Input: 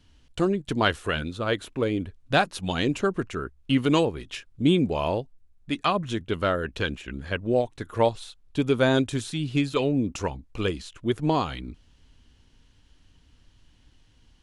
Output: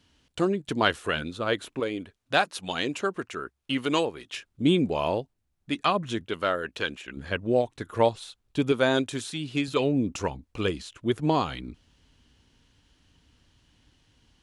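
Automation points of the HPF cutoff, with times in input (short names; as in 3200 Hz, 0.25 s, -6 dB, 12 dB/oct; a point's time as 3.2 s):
HPF 6 dB/oct
180 Hz
from 1.8 s 500 Hz
from 4.34 s 150 Hz
from 6.26 s 440 Hz
from 7.17 s 99 Hz
from 8.72 s 310 Hz
from 9.68 s 87 Hz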